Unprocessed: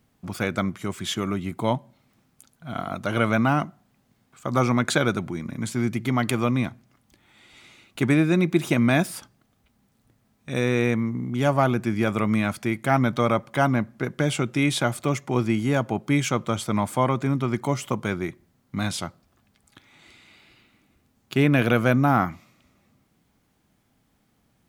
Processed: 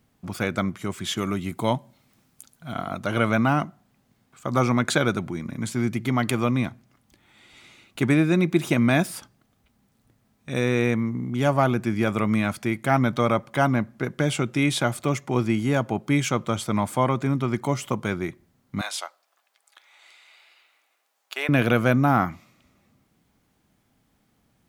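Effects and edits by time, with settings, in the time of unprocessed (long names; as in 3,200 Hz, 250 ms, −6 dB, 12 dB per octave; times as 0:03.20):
0:01.17–0:02.74: high-shelf EQ 3,600 Hz +6.5 dB
0:18.81–0:21.49: high-pass filter 590 Hz 24 dB per octave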